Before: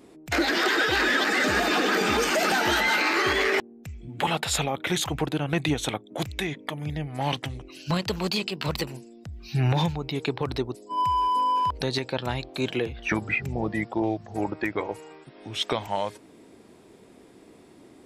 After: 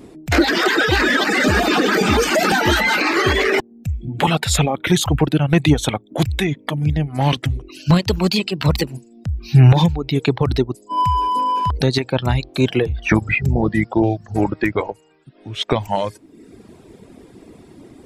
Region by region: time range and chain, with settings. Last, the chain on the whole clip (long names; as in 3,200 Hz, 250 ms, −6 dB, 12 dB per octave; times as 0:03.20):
0:14.90–0:15.76: high-shelf EQ 7,800 Hz −8 dB + notch filter 5,400 Hz, Q 19 + expander for the loud parts, over −40 dBFS
whole clip: low-shelf EQ 230 Hz +11 dB; reverb reduction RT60 0.83 s; level +7 dB